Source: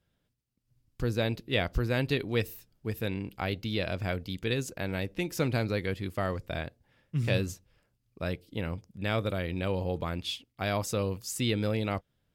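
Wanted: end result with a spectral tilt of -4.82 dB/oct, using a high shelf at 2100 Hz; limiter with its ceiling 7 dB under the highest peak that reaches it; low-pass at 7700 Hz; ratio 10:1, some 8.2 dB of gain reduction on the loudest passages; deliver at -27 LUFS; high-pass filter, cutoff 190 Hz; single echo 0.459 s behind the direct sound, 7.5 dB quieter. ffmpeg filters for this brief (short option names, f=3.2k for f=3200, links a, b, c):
-af "highpass=190,lowpass=7.7k,highshelf=f=2.1k:g=-7.5,acompressor=threshold=-33dB:ratio=10,alimiter=level_in=3dB:limit=-24dB:level=0:latency=1,volume=-3dB,aecho=1:1:459:0.422,volume=14dB"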